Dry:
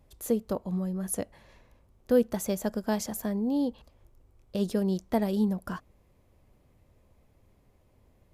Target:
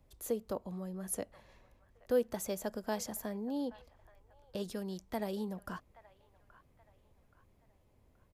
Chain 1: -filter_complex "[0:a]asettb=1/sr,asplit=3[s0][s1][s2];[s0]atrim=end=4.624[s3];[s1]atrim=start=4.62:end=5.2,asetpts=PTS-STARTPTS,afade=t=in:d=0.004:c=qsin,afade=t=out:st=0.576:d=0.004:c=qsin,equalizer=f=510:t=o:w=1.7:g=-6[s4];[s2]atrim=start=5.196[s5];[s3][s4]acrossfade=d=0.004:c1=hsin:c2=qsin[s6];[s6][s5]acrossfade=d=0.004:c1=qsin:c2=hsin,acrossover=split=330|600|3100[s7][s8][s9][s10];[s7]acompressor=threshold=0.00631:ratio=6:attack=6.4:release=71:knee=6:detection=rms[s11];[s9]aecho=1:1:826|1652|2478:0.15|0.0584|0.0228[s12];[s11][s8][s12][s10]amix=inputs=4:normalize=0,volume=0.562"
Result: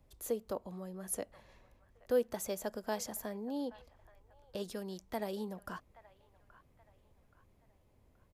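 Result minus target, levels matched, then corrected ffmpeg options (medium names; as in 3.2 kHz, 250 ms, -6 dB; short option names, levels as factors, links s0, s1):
compression: peak gain reduction +5.5 dB
-filter_complex "[0:a]asettb=1/sr,asplit=3[s0][s1][s2];[s0]atrim=end=4.624[s3];[s1]atrim=start=4.62:end=5.2,asetpts=PTS-STARTPTS,afade=t=in:d=0.004:c=qsin,afade=t=out:st=0.576:d=0.004:c=qsin,equalizer=f=510:t=o:w=1.7:g=-6[s4];[s2]atrim=start=5.196[s5];[s3][s4]acrossfade=d=0.004:c1=hsin:c2=qsin[s6];[s6][s5]acrossfade=d=0.004:c1=qsin:c2=hsin,acrossover=split=330|600|3100[s7][s8][s9][s10];[s7]acompressor=threshold=0.0133:ratio=6:attack=6.4:release=71:knee=6:detection=rms[s11];[s9]aecho=1:1:826|1652|2478:0.15|0.0584|0.0228[s12];[s11][s8][s12][s10]amix=inputs=4:normalize=0,volume=0.562"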